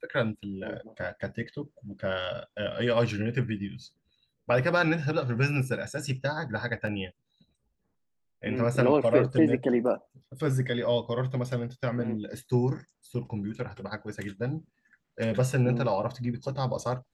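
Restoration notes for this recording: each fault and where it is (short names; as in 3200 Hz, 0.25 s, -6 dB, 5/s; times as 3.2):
6.87 gap 2.7 ms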